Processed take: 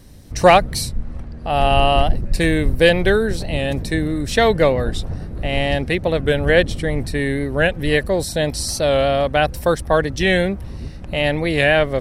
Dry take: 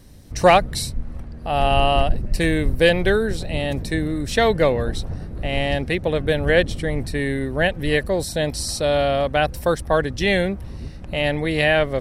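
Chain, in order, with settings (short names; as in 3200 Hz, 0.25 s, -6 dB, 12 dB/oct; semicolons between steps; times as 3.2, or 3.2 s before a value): 1.03–1.5 LPF 9100 Hz 12 dB/oct; record warp 45 rpm, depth 100 cents; gain +2.5 dB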